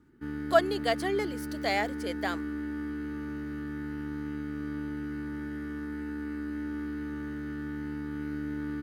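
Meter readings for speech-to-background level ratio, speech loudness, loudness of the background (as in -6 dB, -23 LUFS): 6.5 dB, -30.0 LUFS, -36.5 LUFS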